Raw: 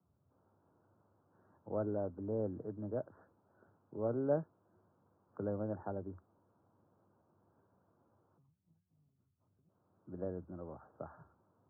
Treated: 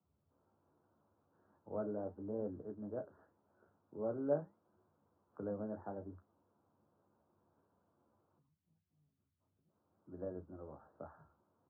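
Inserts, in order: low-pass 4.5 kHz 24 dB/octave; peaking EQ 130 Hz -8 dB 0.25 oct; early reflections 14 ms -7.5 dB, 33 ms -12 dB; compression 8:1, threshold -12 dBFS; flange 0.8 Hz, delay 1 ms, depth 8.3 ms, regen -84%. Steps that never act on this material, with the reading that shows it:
low-pass 4.5 kHz: input has nothing above 1.5 kHz; compression, threshold -12 dBFS: peak at its input -18.0 dBFS

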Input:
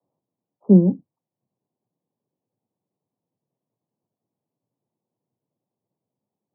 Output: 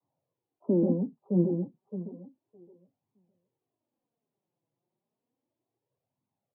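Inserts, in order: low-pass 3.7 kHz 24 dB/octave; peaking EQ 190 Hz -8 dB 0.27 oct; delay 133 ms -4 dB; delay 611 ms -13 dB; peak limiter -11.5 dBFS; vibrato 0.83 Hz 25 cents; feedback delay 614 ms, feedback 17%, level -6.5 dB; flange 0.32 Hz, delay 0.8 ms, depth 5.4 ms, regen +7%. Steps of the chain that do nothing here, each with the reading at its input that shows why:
low-pass 3.7 kHz: input has nothing above 600 Hz

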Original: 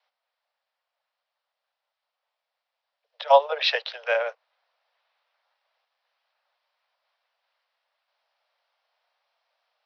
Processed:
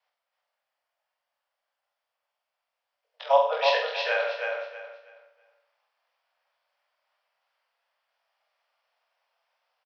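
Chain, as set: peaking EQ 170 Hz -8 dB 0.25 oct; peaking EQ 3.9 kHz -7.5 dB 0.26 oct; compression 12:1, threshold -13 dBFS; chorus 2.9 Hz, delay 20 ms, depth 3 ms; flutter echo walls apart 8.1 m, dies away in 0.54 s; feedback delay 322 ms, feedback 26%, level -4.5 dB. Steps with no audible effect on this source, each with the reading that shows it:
peaking EQ 170 Hz: input has nothing below 400 Hz

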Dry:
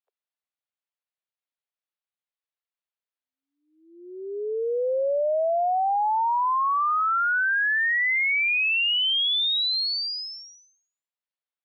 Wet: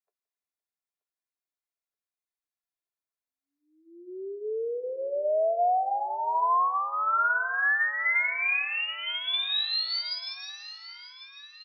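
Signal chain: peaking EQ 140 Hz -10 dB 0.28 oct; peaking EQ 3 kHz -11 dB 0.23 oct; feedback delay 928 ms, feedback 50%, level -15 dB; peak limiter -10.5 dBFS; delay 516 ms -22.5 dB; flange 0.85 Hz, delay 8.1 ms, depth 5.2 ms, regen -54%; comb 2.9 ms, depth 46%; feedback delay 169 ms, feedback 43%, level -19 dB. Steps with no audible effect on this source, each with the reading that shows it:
peaking EQ 140 Hz: input has nothing below 340 Hz; peak limiter -10.5 dBFS: peak at its input -18.0 dBFS

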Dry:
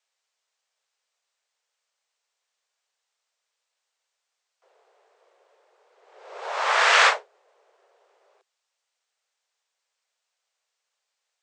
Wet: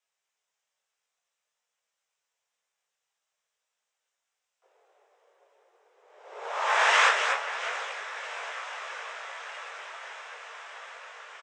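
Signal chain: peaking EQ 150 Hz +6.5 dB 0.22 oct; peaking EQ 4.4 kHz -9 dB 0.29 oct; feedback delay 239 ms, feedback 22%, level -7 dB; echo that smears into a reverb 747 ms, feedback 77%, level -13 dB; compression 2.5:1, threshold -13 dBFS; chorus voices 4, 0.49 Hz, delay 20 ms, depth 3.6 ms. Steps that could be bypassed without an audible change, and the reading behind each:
peaking EQ 150 Hz: input has nothing below 340 Hz

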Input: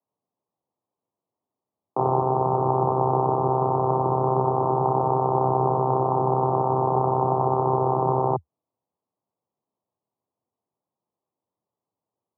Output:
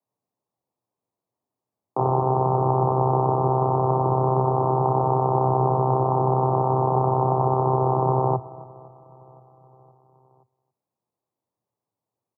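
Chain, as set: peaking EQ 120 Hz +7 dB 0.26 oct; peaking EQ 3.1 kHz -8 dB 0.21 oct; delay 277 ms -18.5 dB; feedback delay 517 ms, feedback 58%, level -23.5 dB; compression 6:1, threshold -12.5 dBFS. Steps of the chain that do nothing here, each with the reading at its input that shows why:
peaking EQ 3.1 kHz: input has nothing above 1.2 kHz

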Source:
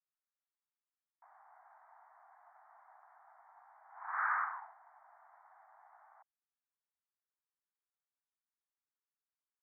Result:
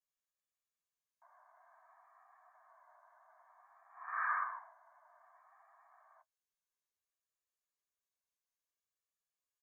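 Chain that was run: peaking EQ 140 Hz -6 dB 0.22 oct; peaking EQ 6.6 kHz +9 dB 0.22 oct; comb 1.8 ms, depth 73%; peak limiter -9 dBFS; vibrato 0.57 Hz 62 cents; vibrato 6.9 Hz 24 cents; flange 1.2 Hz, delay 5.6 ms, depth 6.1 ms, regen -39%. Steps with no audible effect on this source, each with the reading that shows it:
peaking EQ 140 Hz: input has nothing below 600 Hz; peaking EQ 6.6 kHz: input has nothing above 2.3 kHz; peak limiter -9 dBFS: peak at its input -20.5 dBFS

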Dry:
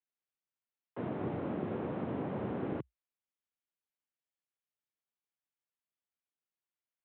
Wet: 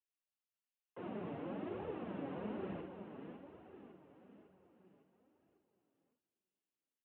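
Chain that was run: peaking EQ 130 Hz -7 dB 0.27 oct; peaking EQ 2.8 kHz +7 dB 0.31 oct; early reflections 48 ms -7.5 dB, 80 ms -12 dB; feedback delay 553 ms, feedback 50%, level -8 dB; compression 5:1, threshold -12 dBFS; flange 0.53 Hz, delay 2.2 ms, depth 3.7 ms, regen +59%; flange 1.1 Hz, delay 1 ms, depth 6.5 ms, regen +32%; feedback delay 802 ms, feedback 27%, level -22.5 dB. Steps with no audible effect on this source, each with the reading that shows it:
compression, threshold -12 dBFS: peak at its input -22.5 dBFS

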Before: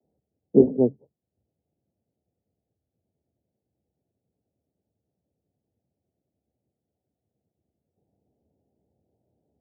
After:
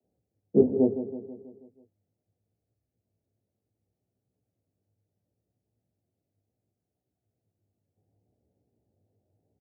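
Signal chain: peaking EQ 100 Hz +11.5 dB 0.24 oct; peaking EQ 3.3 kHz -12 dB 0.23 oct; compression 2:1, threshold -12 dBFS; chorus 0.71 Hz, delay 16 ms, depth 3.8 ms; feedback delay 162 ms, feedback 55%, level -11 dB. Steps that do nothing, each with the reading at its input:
peaking EQ 3.3 kHz: input has nothing above 810 Hz

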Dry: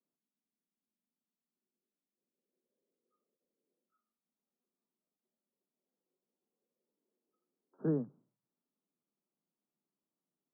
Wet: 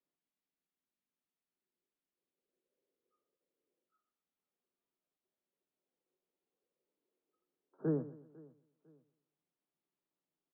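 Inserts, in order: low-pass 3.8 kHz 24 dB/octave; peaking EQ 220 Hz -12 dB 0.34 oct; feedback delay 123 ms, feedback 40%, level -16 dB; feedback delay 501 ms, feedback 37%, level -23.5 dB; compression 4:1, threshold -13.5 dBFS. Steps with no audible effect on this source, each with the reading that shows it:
low-pass 3.8 kHz: input has nothing above 680 Hz; compression, threshold -13.5 dBFS: peak at its input -22.5 dBFS

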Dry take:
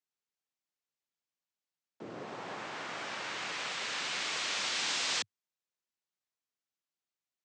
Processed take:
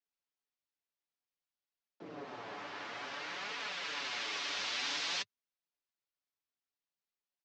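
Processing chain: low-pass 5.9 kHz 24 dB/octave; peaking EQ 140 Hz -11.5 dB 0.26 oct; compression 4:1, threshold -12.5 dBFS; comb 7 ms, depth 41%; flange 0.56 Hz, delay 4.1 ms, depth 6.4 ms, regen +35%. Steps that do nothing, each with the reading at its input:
compression, threshold -12.5 dBFS: peak at its input -22.0 dBFS

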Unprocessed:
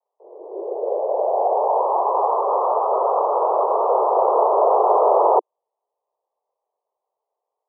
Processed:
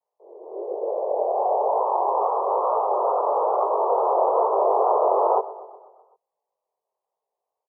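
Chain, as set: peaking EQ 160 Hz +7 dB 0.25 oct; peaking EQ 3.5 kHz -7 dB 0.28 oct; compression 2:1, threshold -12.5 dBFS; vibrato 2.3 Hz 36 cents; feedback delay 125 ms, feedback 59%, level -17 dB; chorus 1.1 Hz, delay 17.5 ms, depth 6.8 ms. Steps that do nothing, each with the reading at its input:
peaking EQ 160 Hz: input has nothing below 320 Hz; peaking EQ 3.5 kHz: input has nothing above 1.4 kHz

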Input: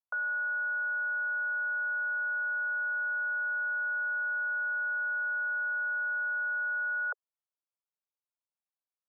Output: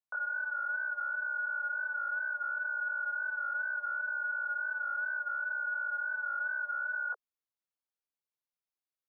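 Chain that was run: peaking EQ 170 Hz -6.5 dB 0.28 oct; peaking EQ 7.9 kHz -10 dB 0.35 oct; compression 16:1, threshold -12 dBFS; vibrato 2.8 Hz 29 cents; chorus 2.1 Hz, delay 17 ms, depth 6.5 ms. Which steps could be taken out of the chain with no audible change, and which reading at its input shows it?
peaking EQ 170 Hz: input has nothing below 540 Hz; peaking EQ 7.9 kHz: input has nothing above 1.5 kHz; compression, threshold -12 dBFS: peak at its input -26.0 dBFS

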